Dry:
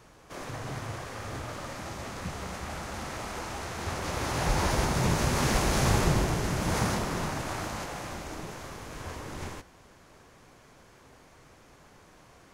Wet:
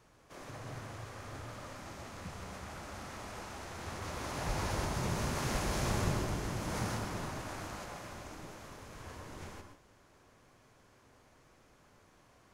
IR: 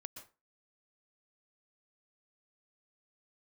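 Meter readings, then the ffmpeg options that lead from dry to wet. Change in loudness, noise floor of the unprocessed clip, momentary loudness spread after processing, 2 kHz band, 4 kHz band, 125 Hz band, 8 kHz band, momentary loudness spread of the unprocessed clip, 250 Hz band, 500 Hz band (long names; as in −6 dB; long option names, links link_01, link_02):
−8.5 dB, −56 dBFS, 15 LU, −8.5 dB, −8.5 dB, −8.0 dB, −8.5 dB, 14 LU, −8.5 dB, −8.0 dB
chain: -filter_complex "[1:a]atrim=start_sample=2205[link_01];[0:a][link_01]afir=irnorm=-1:irlink=0,volume=-3.5dB"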